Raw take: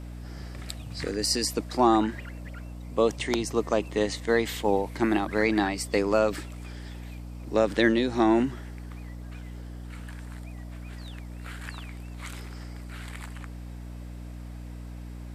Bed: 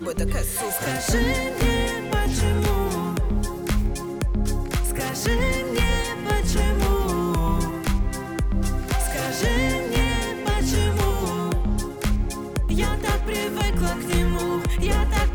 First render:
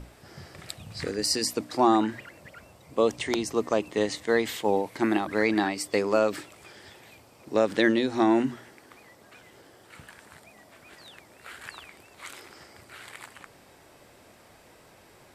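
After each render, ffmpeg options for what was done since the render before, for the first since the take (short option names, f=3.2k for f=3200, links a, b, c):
-af "bandreject=f=60:t=h:w=6,bandreject=f=120:t=h:w=6,bandreject=f=180:t=h:w=6,bandreject=f=240:t=h:w=6,bandreject=f=300:t=h:w=6"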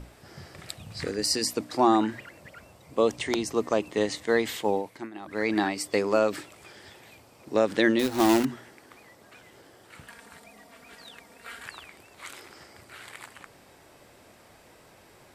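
-filter_complex "[0:a]asettb=1/sr,asplit=3[a][b][c];[a]atrim=end=7.994[d];[b]atrim=start=7.99:end=8.45,asetpts=PTS-STARTPTS,afade=t=in:d=0.004:c=qsin,afade=t=out:st=0.456:d=0.004:c=qsin,acrusher=bits=2:mode=log:mix=0:aa=0.000001[e];[c]atrim=start=8.446[f];[d][e]acrossfade=d=0.004:c1=hsin:c2=qsin[g];[g][f]acrossfade=d=0.004:c1=qsin:c2=hsin,asettb=1/sr,asplit=3[h][i][j];[h]atrim=end=10.074[k];[i]atrim=start=10.07:end=11.64,asetpts=PTS-STARTPTS,afade=t=in:d=0.004:c=qsin,afade=t=out:st=1.566:d=0.004:c=qsin,aecho=1:1:4.3:0.65,atrim=end_sample=69237[l];[j]atrim=start=11.636[m];[k][l]acrossfade=d=0.004:c1=hsin:c2=qsin[n];[n][m]acrossfade=d=0.004:c1=qsin:c2=hsin,asplit=2[o][p];[o]atrim=end=5.12,asetpts=PTS-STARTPTS,afade=t=out:st=4.63:d=0.49:silence=0.0794328[q];[p]atrim=start=5.12,asetpts=PTS-STARTPTS,afade=t=in:d=0.49:silence=0.0794328[r];[q][r]concat=n=2:v=0:a=1"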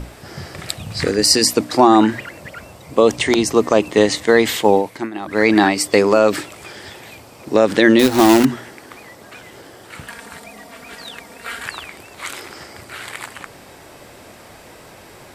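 -af "alimiter=level_in=13dB:limit=-1dB:release=50:level=0:latency=1"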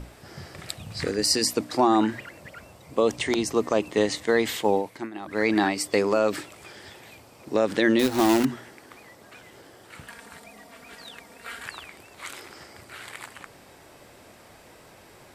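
-af "volume=-9dB"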